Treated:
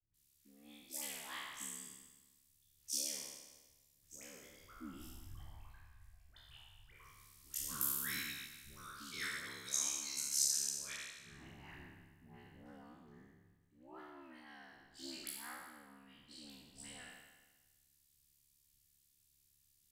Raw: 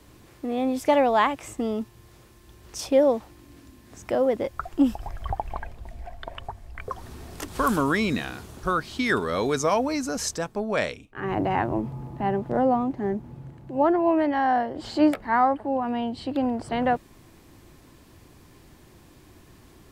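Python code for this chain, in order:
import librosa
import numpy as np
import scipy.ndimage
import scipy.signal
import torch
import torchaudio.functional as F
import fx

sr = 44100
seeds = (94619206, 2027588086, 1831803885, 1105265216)

y = fx.spec_trails(x, sr, decay_s=1.71)
y = fx.tone_stack(y, sr, knobs='6-0-2')
y = y * np.sin(2.0 * np.pi * 35.0 * np.arange(len(y)) / sr)
y = F.preemphasis(torch.from_numpy(y), 0.9).numpy()
y = fx.dispersion(y, sr, late='highs', ms=139.0, hz=810.0)
y = fx.band_widen(y, sr, depth_pct=40)
y = y * librosa.db_to_amplitude(9.0)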